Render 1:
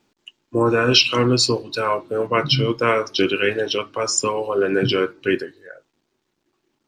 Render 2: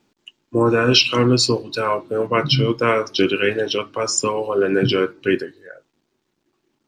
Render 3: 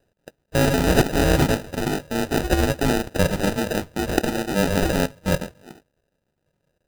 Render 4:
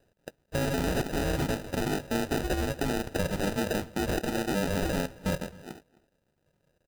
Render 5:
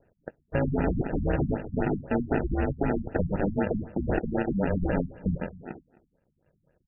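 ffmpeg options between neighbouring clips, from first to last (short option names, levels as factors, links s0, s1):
-af "equalizer=f=190:w=0.7:g=3"
-af "aeval=exprs='val(0)*sin(2*PI*2000*n/s)':c=same,tiltshelf=f=830:g=-8,acrusher=samples=40:mix=1:aa=0.000001,volume=0.562"
-filter_complex "[0:a]acompressor=threshold=0.0631:ratio=6,asoftclip=type=hard:threshold=0.0891,asplit=2[s0][s1];[s1]adelay=262.4,volume=0.0794,highshelf=f=4000:g=-5.9[s2];[s0][s2]amix=inputs=2:normalize=0"
-af "afftfilt=real='re*lt(b*sr/1024,240*pow(2900/240,0.5+0.5*sin(2*PI*3.9*pts/sr)))':imag='im*lt(b*sr/1024,240*pow(2900/240,0.5+0.5*sin(2*PI*3.9*pts/sr)))':win_size=1024:overlap=0.75,volume=1.5"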